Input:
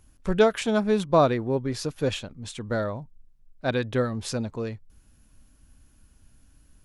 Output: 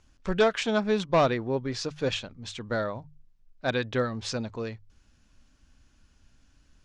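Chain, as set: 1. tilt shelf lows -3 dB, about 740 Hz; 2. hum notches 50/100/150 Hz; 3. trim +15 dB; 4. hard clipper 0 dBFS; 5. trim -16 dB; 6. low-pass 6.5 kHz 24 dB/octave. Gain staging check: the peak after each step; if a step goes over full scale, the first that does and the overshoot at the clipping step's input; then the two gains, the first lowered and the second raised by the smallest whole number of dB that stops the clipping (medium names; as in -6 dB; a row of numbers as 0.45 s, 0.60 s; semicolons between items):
-7.0 dBFS, -7.0 dBFS, +8.0 dBFS, 0.0 dBFS, -16.0 dBFS, -15.0 dBFS; step 3, 8.0 dB; step 3 +7 dB, step 5 -8 dB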